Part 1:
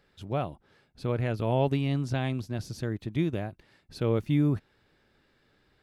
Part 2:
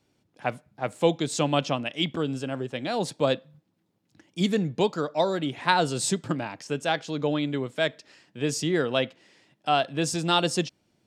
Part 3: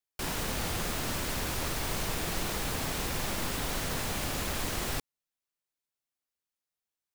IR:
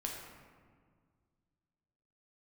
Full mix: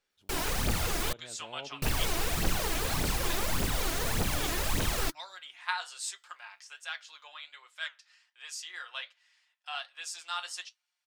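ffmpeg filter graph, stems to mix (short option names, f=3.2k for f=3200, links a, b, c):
-filter_complex "[0:a]equalizer=f=90:t=o:w=2.5:g=-14.5,volume=-18.5dB,asplit=2[a][b];[b]volume=-13.5dB[c];[1:a]highpass=f=1.1k:w=0.5412,highpass=f=1.1k:w=1.3066,aecho=1:1:5.6:0.49,flanger=delay=8.3:depth=7.4:regen=-62:speed=1.3:shape=sinusoidal,volume=-5dB[d];[2:a]aphaser=in_gain=1:out_gain=1:delay=3.2:decay=0.61:speed=1.7:type=triangular,adelay=100,volume=-0.5dB,asplit=3[e][f][g];[e]atrim=end=1.13,asetpts=PTS-STARTPTS,afade=t=out:st=1.126:d=0.004:c=hsin[h];[f]atrim=start=1.13:end=1.82,asetpts=PTS-STARTPTS,volume=0[i];[g]atrim=start=1.82,asetpts=PTS-STARTPTS,afade=t=in:d=0.004:c=hsin[j];[h][i][j]concat=n=3:v=0:a=1[k];[3:a]atrim=start_sample=2205[l];[c][l]afir=irnorm=-1:irlink=0[m];[a][d][k][m]amix=inputs=4:normalize=0"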